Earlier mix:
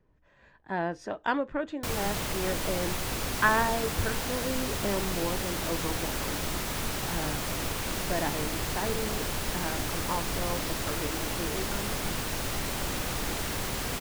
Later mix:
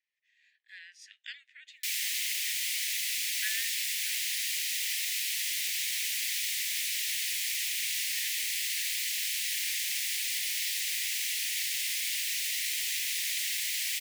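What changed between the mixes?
background +4.5 dB
master: add Butterworth high-pass 1,900 Hz 72 dB per octave

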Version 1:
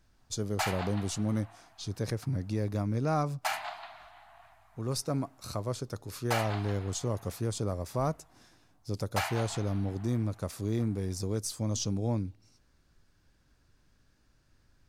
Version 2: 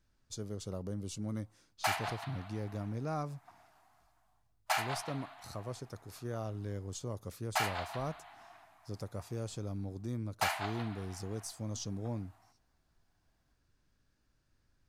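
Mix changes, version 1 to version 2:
speech −8.0 dB
background: entry +1.25 s

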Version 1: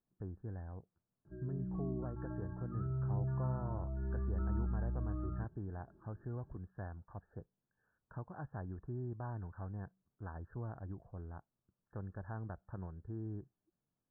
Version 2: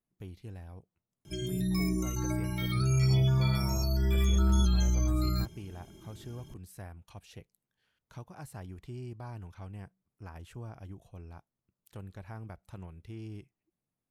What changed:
background +11.5 dB
master: remove linear-phase brick-wall low-pass 1,800 Hz

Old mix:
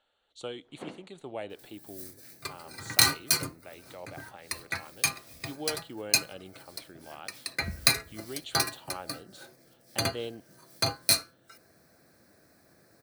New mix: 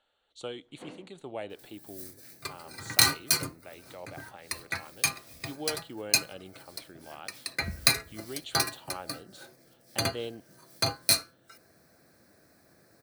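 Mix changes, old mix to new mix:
first sound −8.5 dB
reverb: on, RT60 0.40 s

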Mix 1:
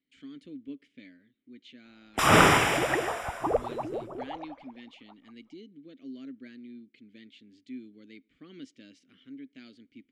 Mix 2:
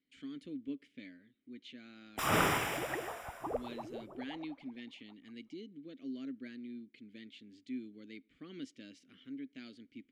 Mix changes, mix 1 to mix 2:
background −11.0 dB
master: remove low-pass filter 10,000 Hz 12 dB per octave

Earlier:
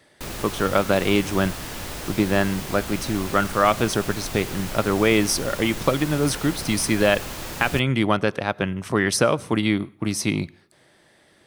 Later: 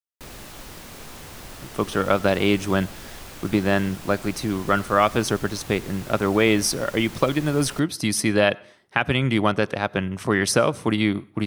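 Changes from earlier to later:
speech: entry +1.35 s
background −7.0 dB

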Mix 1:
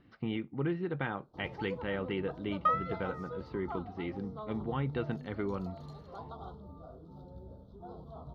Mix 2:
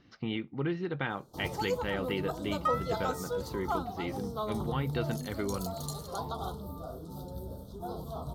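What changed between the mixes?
first sound +7.5 dB
second sound −4.0 dB
master: remove high-frequency loss of the air 310 metres

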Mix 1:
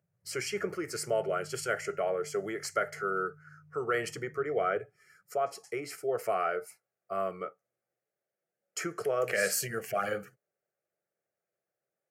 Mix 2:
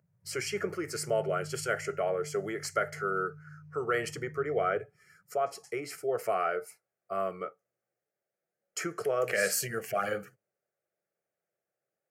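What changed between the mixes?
speech: send on
background +7.5 dB

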